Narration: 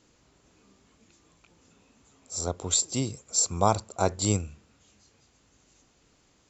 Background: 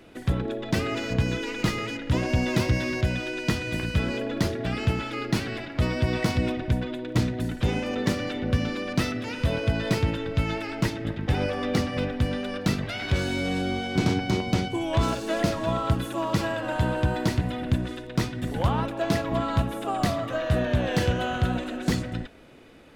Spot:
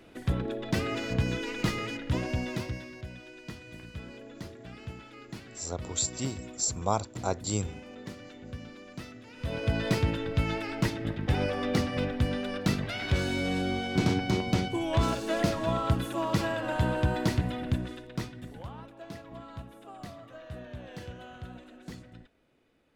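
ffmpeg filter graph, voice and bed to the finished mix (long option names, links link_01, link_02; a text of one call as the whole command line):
ffmpeg -i stem1.wav -i stem2.wav -filter_complex "[0:a]adelay=3250,volume=-5dB[link_01];[1:a]volume=11dB,afade=type=out:start_time=1.94:duration=0.95:silence=0.211349,afade=type=in:start_time=9.33:duration=0.42:silence=0.188365,afade=type=out:start_time=17.39:duration=1.27:silence=0.158489[link_02];[link_01][link_02]amix=inputs=2:normalize=0" out.wav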